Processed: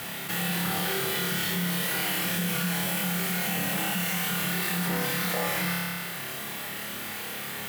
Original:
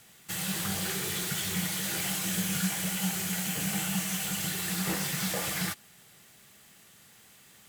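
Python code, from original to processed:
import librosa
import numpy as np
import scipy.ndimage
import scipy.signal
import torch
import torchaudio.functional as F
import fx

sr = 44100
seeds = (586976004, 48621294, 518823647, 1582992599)

p1 = fx.highpass(x, sr, hz=200.0, slope=6)
p2 = fx.peak_eq(p1, sr, hz=7200.0, db=-12.0, octaves=1.4)
p3 = p2 + fx.room_flutter(p2, sr, wall_m=4.9, rt60_s=0.79, dry=0)
y = fx.env_flatten(p3, sr, amount_pct=70)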